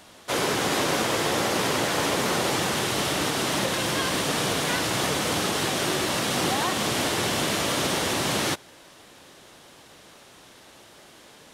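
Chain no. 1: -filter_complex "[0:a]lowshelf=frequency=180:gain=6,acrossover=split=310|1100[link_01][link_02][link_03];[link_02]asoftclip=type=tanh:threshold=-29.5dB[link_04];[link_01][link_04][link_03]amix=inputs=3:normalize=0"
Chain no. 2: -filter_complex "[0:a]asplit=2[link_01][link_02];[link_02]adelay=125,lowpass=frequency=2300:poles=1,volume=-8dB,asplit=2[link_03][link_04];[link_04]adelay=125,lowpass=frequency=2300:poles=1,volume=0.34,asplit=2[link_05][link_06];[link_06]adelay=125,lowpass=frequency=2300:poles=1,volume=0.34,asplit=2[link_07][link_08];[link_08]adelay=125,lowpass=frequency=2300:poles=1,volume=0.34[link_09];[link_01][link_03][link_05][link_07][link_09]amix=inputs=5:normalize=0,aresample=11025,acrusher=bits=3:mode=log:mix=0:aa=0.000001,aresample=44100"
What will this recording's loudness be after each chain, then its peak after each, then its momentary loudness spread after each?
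−24.5, −24.5 LKFS; −12.5, −10.0 dBFS; 1, 1 LU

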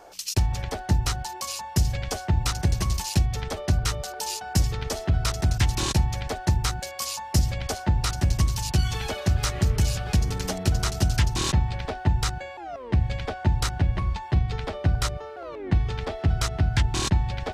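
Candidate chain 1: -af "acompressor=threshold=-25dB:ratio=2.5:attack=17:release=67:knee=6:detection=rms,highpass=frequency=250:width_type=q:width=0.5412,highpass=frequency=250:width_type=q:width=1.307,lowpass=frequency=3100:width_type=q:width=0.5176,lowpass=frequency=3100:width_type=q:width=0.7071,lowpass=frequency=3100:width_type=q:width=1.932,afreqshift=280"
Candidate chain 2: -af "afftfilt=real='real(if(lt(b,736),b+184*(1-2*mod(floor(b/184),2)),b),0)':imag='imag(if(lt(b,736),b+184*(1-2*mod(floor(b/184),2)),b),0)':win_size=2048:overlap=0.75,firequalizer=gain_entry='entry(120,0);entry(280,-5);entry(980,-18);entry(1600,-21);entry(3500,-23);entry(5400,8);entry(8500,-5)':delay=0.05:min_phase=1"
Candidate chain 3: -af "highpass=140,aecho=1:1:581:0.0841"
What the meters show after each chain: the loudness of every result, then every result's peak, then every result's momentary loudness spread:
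−36.0, −29.5, −30.0 LKFS; −18.0, −12.5, −11.0 dBFS; 4, 5, 5 LU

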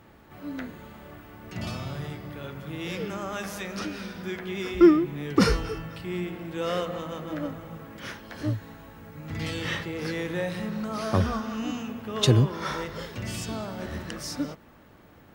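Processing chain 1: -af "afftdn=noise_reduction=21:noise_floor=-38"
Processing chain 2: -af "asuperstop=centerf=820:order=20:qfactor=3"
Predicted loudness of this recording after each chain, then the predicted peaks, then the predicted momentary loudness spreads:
−29.0, −29.0 LKFS; −6.5, −6.5 dBFS; 17, 18 LU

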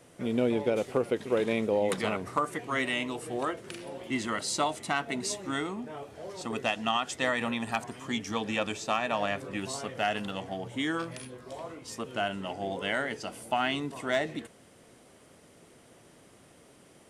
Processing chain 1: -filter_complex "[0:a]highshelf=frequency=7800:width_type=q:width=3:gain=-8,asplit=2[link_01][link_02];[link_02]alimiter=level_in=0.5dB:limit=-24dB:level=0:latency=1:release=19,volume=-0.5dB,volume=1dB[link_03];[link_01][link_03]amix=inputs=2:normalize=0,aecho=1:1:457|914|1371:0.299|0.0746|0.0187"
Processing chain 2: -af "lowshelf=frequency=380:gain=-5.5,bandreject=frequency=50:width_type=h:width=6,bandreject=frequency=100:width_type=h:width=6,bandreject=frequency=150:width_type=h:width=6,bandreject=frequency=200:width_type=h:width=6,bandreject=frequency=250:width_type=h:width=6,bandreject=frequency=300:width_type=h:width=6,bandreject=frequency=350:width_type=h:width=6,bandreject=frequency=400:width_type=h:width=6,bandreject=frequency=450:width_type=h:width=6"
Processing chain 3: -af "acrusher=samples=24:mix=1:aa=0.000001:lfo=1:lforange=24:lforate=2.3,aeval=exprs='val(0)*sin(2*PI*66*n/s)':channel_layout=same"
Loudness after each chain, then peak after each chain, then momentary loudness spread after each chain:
−26.5, −33.0, −35.0 LKFS; −10.5, −15.0, −15.5 dBFS; 9, 12, 13 LU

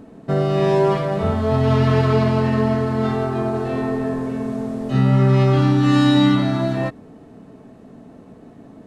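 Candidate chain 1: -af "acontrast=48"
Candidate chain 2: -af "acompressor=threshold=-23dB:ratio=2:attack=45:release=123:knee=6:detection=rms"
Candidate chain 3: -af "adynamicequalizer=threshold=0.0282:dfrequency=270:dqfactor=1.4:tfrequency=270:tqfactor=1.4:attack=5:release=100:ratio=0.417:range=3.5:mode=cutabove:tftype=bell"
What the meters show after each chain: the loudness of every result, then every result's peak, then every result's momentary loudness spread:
−13.5, −22.5, −20.5 LKFS; −2.0, −9.5, −7.5 dBFS; 9, 6, 10 LU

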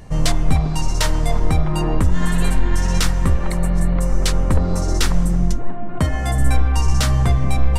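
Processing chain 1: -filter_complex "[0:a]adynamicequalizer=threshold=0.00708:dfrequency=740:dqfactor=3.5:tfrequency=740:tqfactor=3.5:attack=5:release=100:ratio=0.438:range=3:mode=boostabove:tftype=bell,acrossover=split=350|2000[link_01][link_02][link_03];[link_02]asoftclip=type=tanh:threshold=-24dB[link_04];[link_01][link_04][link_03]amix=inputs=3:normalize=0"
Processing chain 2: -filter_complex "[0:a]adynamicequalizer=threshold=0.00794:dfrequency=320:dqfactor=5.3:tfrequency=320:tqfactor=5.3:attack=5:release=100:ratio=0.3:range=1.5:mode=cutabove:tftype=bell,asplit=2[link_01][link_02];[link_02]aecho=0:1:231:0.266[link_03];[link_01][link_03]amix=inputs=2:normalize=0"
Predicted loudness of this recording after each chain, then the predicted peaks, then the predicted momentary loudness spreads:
−20.0, −19.5 LKFS; −4.0, −4.0 dBFS; 3, 4 LU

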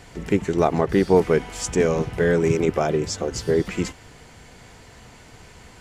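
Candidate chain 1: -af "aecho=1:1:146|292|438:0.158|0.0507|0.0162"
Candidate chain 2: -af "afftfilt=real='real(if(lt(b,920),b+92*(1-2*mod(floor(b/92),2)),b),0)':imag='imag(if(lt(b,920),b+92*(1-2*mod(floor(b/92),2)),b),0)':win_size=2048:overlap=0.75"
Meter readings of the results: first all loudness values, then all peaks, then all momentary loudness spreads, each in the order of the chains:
−21.5, −18.5 LKFS; −4.0, −3.5 dBFS; 8, 9 LU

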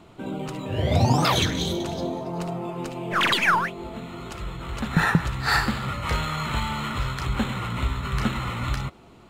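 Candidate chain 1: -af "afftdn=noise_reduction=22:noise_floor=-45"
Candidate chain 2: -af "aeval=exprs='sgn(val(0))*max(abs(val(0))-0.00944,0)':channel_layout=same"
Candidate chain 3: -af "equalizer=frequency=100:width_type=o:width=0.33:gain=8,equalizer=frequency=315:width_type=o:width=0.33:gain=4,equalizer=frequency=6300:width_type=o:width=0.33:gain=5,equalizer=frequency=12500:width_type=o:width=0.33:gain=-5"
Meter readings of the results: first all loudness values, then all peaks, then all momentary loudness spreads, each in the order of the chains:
−25.0, −26.0, −24.0 LKFS; −7.0, −7.0, −5.0 dBFS; 14, 16, 14 LU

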